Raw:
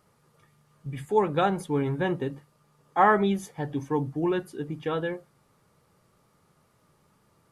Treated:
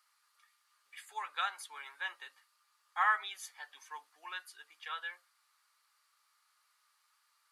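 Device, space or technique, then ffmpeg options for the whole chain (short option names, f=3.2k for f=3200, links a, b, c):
headphones lying on a table: -af "highpass=f=1.2k:w=0.5412,highpass=f=1.2k:w=1.3066,equalizer=f=4.4k:t=o:w=0.34:g=6,volume=-3dB"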